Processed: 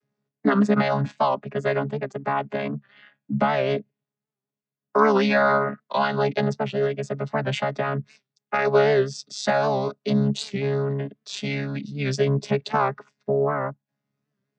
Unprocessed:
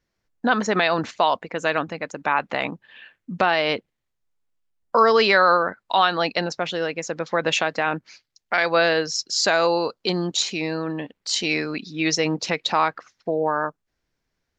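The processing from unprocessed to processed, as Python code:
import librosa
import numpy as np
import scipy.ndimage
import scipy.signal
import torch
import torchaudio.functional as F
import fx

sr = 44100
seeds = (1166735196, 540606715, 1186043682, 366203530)

y = fx.chord_vocoder(x, sr, chord='bare fifth', root=49)
y = fx.record_warp(y, sr, rpm=78.0, depth_cents=100.0)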